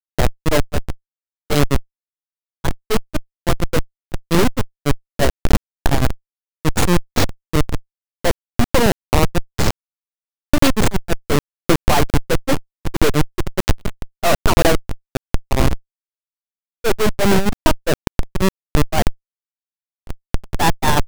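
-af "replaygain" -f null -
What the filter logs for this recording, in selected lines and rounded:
track_gain = -0.3 dB
track_peak = 0.510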